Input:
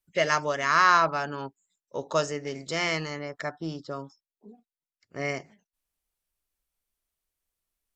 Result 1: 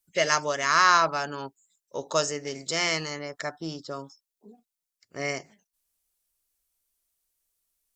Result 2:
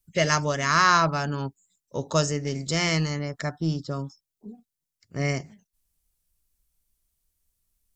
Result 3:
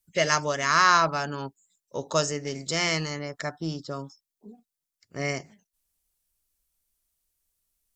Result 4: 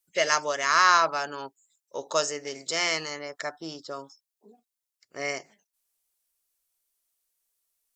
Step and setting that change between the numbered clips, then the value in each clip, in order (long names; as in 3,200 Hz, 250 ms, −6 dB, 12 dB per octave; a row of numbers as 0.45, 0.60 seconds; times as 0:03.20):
bass and treble, bass: −3, +14, +5, −14 decibels